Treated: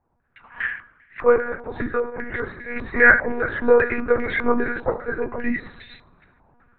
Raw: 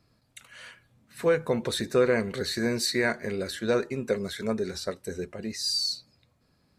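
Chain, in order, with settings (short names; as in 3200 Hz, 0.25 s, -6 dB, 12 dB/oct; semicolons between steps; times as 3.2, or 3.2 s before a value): octaver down 2 oct, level -1 dB; HPF 60 Hz 24 dB/oct; AGC gain up to 14 dB; 0.66–2.76 tremolo triangle 1.9 Hz, depth 100%; reverb RT60 1.0 s, pre-delay 3 ms, DRR 5 dB; monotone LPC vocoder at 8 kHz 240 Hz; stepped low-pass 5 Hz 890–2000 Hz; gain -2.5 dB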